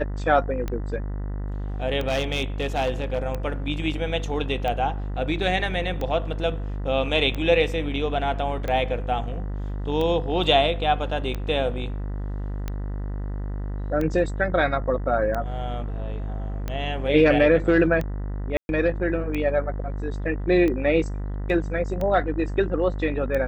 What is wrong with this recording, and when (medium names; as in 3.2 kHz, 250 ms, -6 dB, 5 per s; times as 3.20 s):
buzz 50 Hz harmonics 40 -29 dBFS
tick 45 rpm -16 dBFS
2.07–3.19 s: clipped -18.5 dBFS
18.57–18.69 s: dropout 121 ms